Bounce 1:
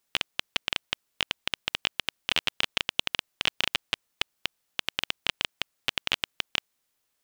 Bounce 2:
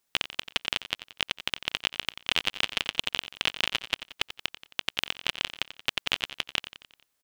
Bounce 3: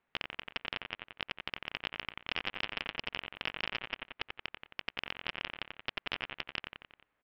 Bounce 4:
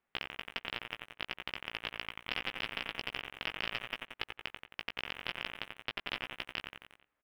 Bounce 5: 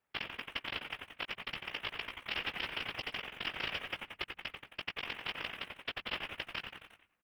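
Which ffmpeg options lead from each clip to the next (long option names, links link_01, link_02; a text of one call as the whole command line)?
ffmpeg -i in.wav -af "aecho=1:1:89|178|267|356|445:0.211|0.114|0.0616|0.0333|0.018" out.wav
ffmpeg -i in.wav -af "lowpass=frequency=2400:width=0.5412,lowpass=frequency=2400:width=1.3066,aresample=11025,asoftclip=type=tanh:threshold=-25.5dB,aresample=44100,volume=4dB" out.wav
ffmpeg -i in.wav -filter_complex "[0:a]asplit=2[link_01][link_02];[link_02]acrusher=bits=6:mix=0:aa=0.000001,volume=-7.5dB[link_03];[link_01][link_03]amix=inputs=2:normalize=0,asplit=2[link_04][link_05];[link_05]adelay=17,volume=-6dB[link_06];[link_04][link_06]amix=inputs=2:normalize=0,volume=-4.5dB" out.wav
ffmpeg -i in.wav -filter_complex "[0:a]asplit=4[link_01][link_02][link_03][link_04];[link_02]adelay=100,afreqshift=-99,volume=-16.5dB[link_05];[link_03]adelay=200,afreqshift=-198,volume=-25.1dB[link_06];[link_04]adelay=300,afreqshift=-297,volume=-33.8dB[link_07];[link_01][link_05][link_06][link_07]amix=inputs=4:normalize=0,afftfilt=real='hypot(re,im)*cos(2*PI*random(0))':imag='hypot(re,im)*sin(2*PI*random(1))':win_size=512:overlap=0.75,volume=6dB" out.wav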